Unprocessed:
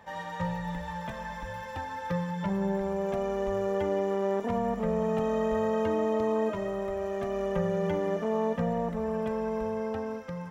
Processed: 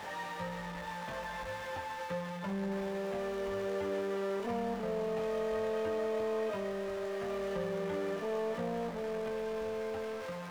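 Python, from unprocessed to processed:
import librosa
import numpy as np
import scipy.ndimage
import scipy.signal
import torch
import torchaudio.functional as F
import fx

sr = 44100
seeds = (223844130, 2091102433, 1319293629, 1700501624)

y = x + 0.5 * 10.0 ** (-30.0 / 20.0) * np.sign(x)
y = fx.lowpass(y, sr, hz=3200.0, slope=6)
y = fx.low_shelf(y, sr, hz=190.0, db=-10.0)
y = fx.doubler(y, sr, ms=21.0, db=-6)
y = y * 10.0 ** (-7.5 / 20.0)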